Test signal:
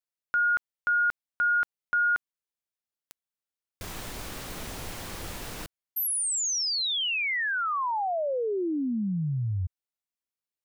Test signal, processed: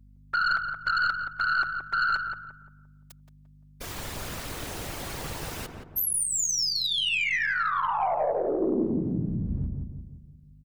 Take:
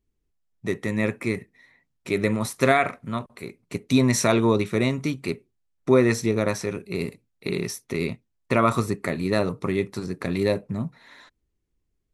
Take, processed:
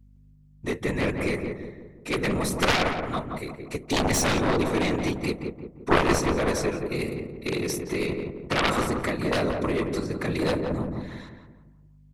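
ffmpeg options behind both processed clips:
-filter_complex "[0:a]equalizer=f=150:t=o:w=1.4:g=-5,afftfilt=real='hypot(re,im)*cos(2*PI*random(0))':imag='hypot(re,im)*sin(2*PI*random(1))':win_size=512:overlap=0.75,aeval=exprs='0.299*(cos(1*acos(clip(val(0)/0.299,-1,1)))-cos(1*PI/2))+0.0422*(cos(4*acos(clip(val(0)/0.299,-1,1)))-cos(4*PI/2))+0.00422*(cos(6*acos(clip(val(0)/0.299,-1,1)))-cos(6*PI/2))+0.15*(cos(7*acos(clip(val(0)/0.299,-1,1)))-cos(7*PI/2))':c=same,aeval=exprs='val(0)+0.00251*(sin(2*PI*50*n/s)+sin(2*PI*2*50*n/s)/2+sin(2*PI*3*50*n/s)/3+sin(2*PI*4*50*n/s)/4+sin(2*PI*5*50*n/s)/5)':c=same,asplit=2[a][b];[b]adelay=173,lowpass=f=1.1k:p=1,volume=-3dB,asplit=2[c][d];[d]adelay=173,lowpass=f=1.1k:p=1,volume=0.49,asplit=2[e][f];[f]adelay=173,lowpass=f=1.1k:p=1,volume=0.49,asplit=2[g][h];[h]adelay=173,lowpass=f=1.1k:p=1,volume=0.49,asplit=2[i][j];[j]adelay=173,lowpass=f=1.1k:p=1,volume=0.49,asplit=2[k][l];[l]adelay=173,lowpass=f=1.1k:p=1,volume=0.49[m];[c][e][g][i][k][m]amix=inputs=6:normalize=0[n];[a][n]amix=inputs=2:normalize=0"

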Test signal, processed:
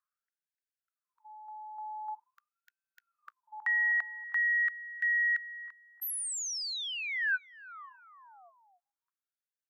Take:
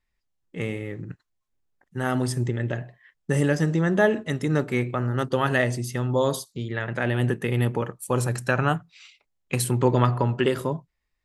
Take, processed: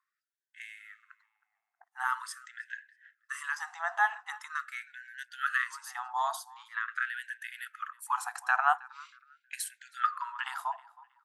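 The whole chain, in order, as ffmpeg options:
-filter_complex "[0:a]highshelf=f=1.8k:t=q:w=1.5:g=-8,acrossover=split=130|450|3300[a][b][c][d];[b]acompressor=mode=upward:threshold=-34dB:ratio=2.5[e];[a][e][c][d]amix=inputs=4:normalize=0,asplit=2[f][g];[g]adelay=318,lowpass=f=3.3k:p=1,volume=-21dB,asplit=2[h][i];[i]adelay=318,lowpass=f=3.3k:p=1,volume=0.34,asplit=2[j][k];[k]adelay=318,lowpass=f=3.3k:p=1,volume=0.34[l];[f][h][j][l]amix=inputs=4:normalize=0,afftfilt=real='re*gte(b*sr/1024,650*pow(1500/650,0.5+0.5*sin(2*PI*0.44*pts/sr)))':imag='im*gte(b*sr/1024,650*pow(1500/650,0.5+0.5*sin(2*PI*0.44*pts/sr)))':win_size=1024:overlap=0.75"

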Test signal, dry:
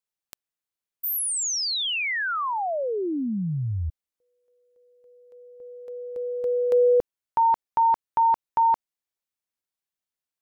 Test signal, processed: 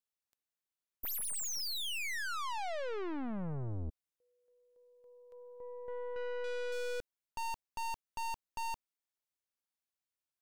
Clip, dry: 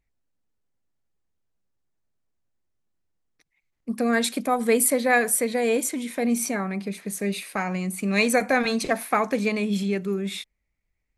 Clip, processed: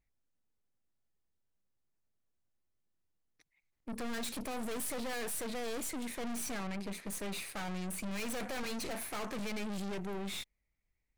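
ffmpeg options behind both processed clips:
-af "aeval=exprs='(tanh(79.4*val(0)+0.8)-tanh(0.8))/79.4':c=same"

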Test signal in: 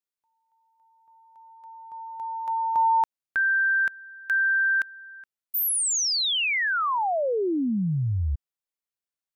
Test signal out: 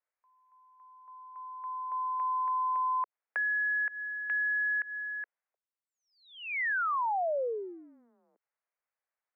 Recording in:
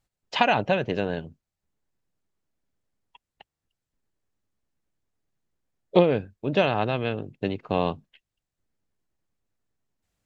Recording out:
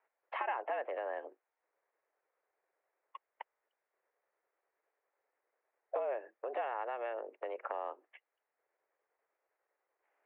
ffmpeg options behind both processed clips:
-af "acompressor=threshold=-35dB:ratio=12:attack=0.87:release=190:knee=6:detection=peak,highpass=f=340:t=q:w=0.5412,highpass=f=340:t=q:w=1.307,lowpass=f=2.1k:t=q:w=0.5176,lowpass=f=2.1k:t=q:w=0.7071,lowpass=f=2.1k:t=q:w=1.932,afreqshift=120,volume=7dB"

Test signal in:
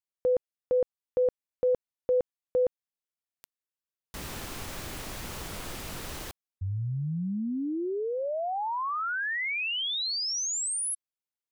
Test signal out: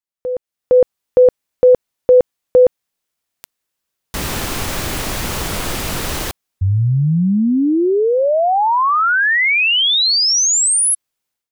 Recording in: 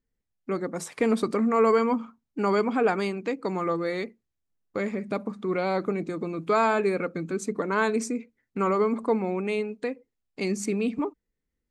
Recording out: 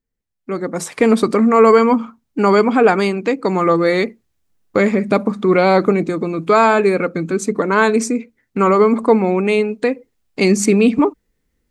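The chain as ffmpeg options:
-af "dynaudnorm=f=390:g=3:m=16.5dB"

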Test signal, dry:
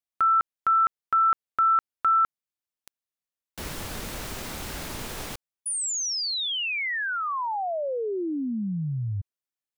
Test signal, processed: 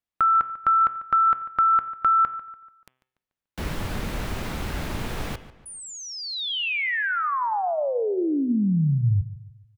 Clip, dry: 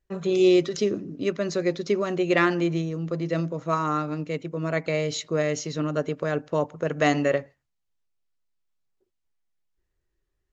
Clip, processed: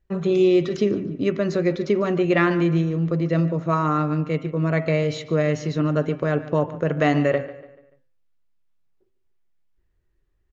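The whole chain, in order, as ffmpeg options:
-filter_complex "[0:a]acrossover=split=3600[a][b];[b]acompressor=threshold=-34dB:ratio=4:attack=1:release=60[c];[a][c]amix=inputs=2:normalize=0,bandreject=f=129:t=h:w=4,bandreject=f=258:t=h:w=4,bandreject=f=387:t=h:w=4,bandreject=f=516:t=h:w=4,bandreject=f=645:t=h:w=4,bandreject=f=774:t=h:w=4,bandreject=f=903:t=h:w=4,bandreject=f=1.032k:t=h:w=4,bandreject=f=1.161k:t=h:w=4,bandreject=f=1.29k:t=h:w=4,bandreject=f=1.419k:t=h:w=4,bandreject=f=1.548k:t=h:w=4,bandreject=f=1.677k:t=h:w=4,bandreject=f=1.806k:t=h:w=4,bandreject=f=1.935k:t=h:w=4,bandreject=f=2.064k:t=h:w=4,bandreject=f=2.193k:t=h:w=4,bandreject=f=2.322k:t=h:w=4,bandreject=f=2.451k:t=h:w=4,bandreject=f=2.58k:t=h:w=4,bandreject=f=2.709k:t=h:w=4,bandreject=f=2.838k:t=h:w=4,bandreject=f=2.967k:t=h:w=4,bandreject=f=3.096k:t=h:w=4,bandreject=f=3.225k:t=h:w=4,bandreject=f=3.354k:t=h:w=4,bandreject=f=3.483k:t=h:w=4,acompressor=threshold=-24dB:ratio=2:attack=46:release=67:knee=6,bass=f=250:g=5,treble=f=4k:g=-9,asplit=2[d][e];[e]adelay=145,lowpass=f=4.3k:p=1,volume=-15.5dB,asplit=2[f][g];[g]adelay=145,lowpass=f=4.3k:p=1,volume=0.43,asplit=2[h][i];[i]adelay=145,lowpass=f=4.3k:p=1,volume=0.43,asplit=2[j][k];[k]adelay=145,lowpass=f=4.3k:p=1,volume=0.43[l];[d][f][h][j][l]amix=inputs=5:normalize=0,volume=4dB"

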